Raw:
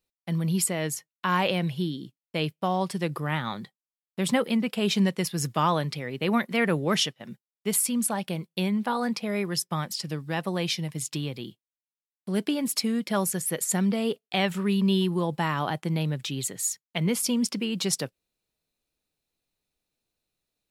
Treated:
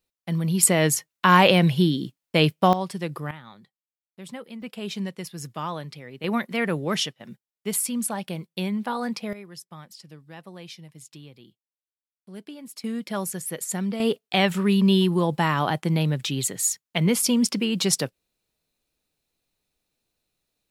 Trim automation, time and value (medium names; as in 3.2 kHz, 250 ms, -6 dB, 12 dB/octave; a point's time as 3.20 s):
+2 dB
from 0.63 s +9 dB
from 2.73 s -1.5 dB
from 3.31 s -14 dB
from 4.62 s -7.5 dB
from 6.24 s -1 dB
from 9.33 s -13.5 dB
from 12.84 s -3 dB
from 14.00 s +4.5 dB